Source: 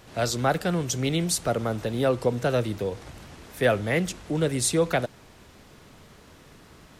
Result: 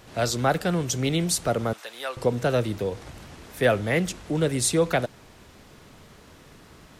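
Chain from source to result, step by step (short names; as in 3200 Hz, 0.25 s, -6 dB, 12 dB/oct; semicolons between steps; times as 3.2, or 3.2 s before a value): 1.73–2.17 HPF 1100 Hz 12 dB/oct; gain +1 dB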